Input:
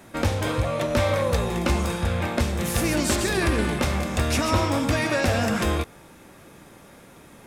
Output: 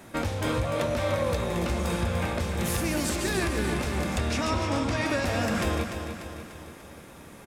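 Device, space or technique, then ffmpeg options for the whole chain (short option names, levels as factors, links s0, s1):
stacked limiters: -filter_complex "[0:a]asettb=1/sr,asplit=3[s0][s1][s2];[s0]atrim=end=4.194[s3];[s1]atrim=start=4.19:end=5.06,asetpts=PTS-STARTPTS,afade=t=in:d=0.004:c=qsin,afade=t=out:st=0.866:d=0.004:c=qsin,lowpass=7300[s4];[s2]atrim=start=5.056[s5];[s3][s4]acrossfade=d=0.004:c1=hsin:c2=qsin[s6];[s6][s5]acrossfade=d=0.004:c1=qsin:c2=hsin,alimiter=limit=0.178:level=0:latency=1:release=446,alimiter=limit=0.126:level=0:latency=1:release=275,aecho=1:1:295|590|885|1180|1475|1770:0.398|0.215|0.116|0.0627|0.0339|0.0183"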